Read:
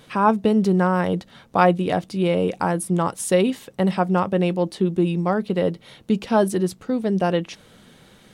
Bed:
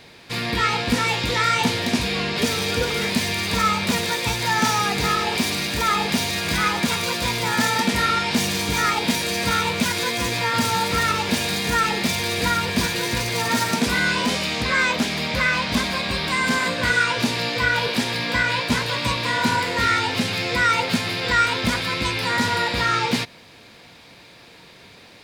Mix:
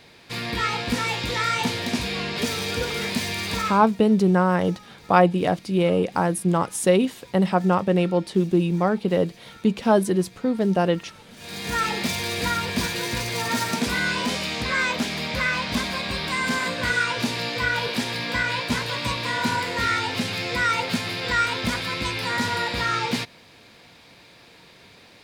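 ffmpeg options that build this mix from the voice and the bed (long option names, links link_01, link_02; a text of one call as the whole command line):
ffmpeg -i stem1.wav -i stem2.wav -filter_complex "[0:a]adelay=3550,volume=0dB[link_01];[1:a]volume=19.5dB,afade=type=out:start_time=3.53:duration=0.38:silence=0.0707946,afade=type=in:start_time=11.36:duration=0.46:silence=0.0668344[link_02];[link_01][link_02]amix=inputs=2:normalize=0" out.wav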